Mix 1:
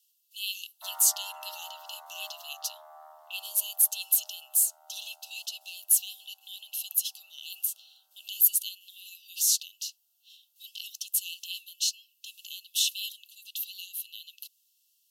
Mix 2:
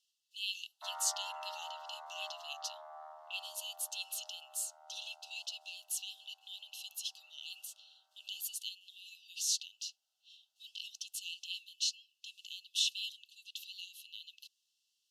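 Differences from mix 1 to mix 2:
speech -3.5 dB; master: add low-pass 5.6 kHz 12 dB/octave

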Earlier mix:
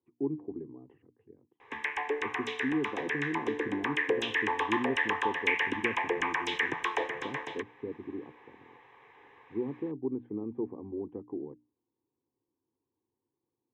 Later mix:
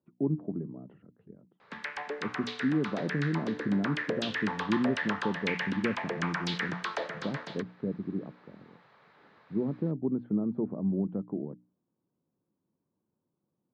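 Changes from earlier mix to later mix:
background -6.5 dB; master: remove static phaser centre 920 Hz, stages 8

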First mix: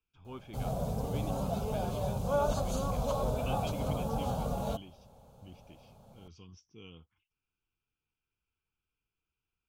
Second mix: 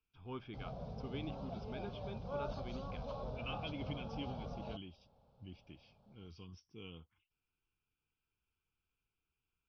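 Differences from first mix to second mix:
background -12.0 dB; master: add steep low-pass 5.5 kHz 72 dB/octave

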